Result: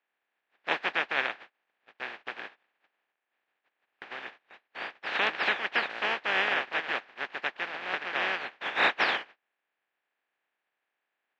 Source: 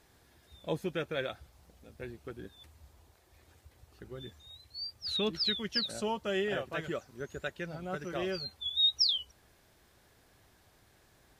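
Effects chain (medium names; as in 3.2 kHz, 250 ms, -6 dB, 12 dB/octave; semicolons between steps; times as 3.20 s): spectral contrast reduction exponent 0.16; cabinet simulation 360–2900 Hz, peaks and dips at 780 Hz +4 dB, 1.7 kHz +7 dB, 2.5 kHz +3 dB; gate -55 dBFS, range -23 dB; trim +7.5 dB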